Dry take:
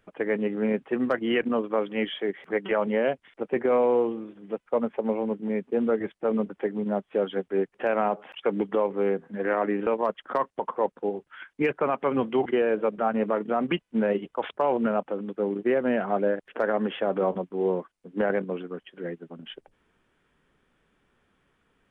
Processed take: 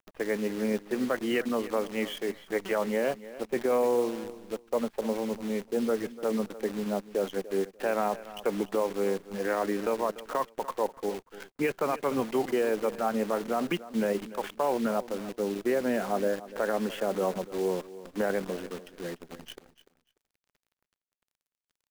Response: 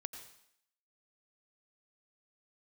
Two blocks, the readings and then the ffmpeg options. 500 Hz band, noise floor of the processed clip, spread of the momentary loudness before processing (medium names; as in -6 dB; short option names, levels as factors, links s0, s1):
-3.5 dB, under -85 dBFS, 9 LU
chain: -af "acrusher=bits=7:dc=4:mix=0:aa=0.000001,aecho=1:1:294|588:0.158|0.0333,volume=0.668"